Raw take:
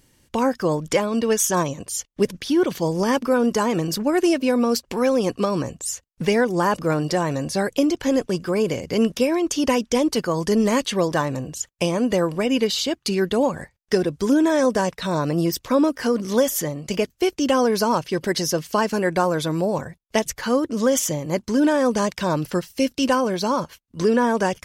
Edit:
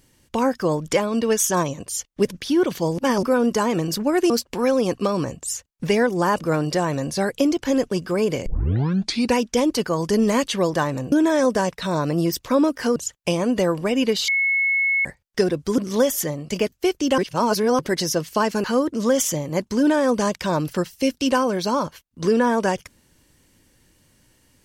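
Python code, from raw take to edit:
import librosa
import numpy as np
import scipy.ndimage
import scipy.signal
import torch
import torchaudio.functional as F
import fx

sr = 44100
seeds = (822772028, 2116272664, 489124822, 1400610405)

y = fx.edit(x, sr, fx.reverse_span(start_s=2.98, length_s=0.25),
    fx.cut(start_s=4.3, length_s=0.38),
    fx.tape_start(start_s=8.84, length_s=0.91),
    fx.bleep(start_s=12.82, length_s=0.77, hz=2190.0, db=-17.0),
    fx.move(start_s=14.32, length_s=1.84, to_s=11.5),
    fx.reverse_span(start_s=17.56, length_s=0.61),
    fx.cut(start_s=19.02, length_s=1.39), tone=tone)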